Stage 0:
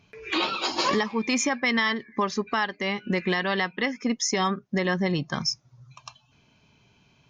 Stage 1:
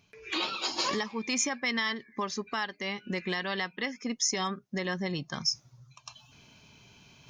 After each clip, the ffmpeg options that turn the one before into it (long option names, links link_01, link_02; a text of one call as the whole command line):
ffmpeg -i in.wav -af "highshelf=frequency=4300:gain=10.5,areverse,acompressor=mode=upward:threshold=-37dB:ratio=2.5,areverse,volume=-8dB" out.wav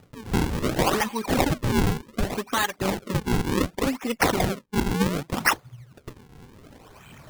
ffmpeg -i in.wav -af "aphaser=in_gain=1:out_gain=1:delay=4.2:decay=0.57:speed=1.4:type=triangular,acrusher=samples=41:mix=1:aa=0.000001:lfo=1:lforange=65.6:lforate=0.67,volume=7dB" out.wav